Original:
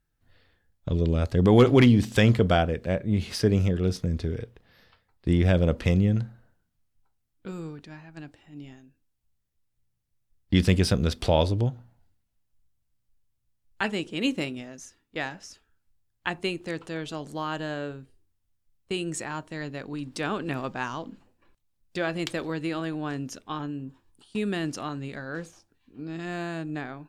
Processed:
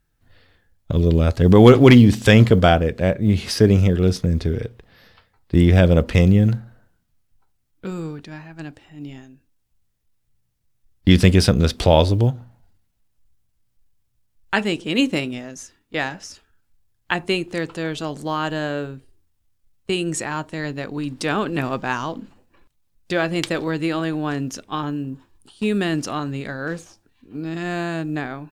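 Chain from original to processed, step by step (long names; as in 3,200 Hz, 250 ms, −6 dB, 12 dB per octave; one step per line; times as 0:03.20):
tempo change 0.95×
floating-point word with a short mantissa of 6 bits
level +7.5 dB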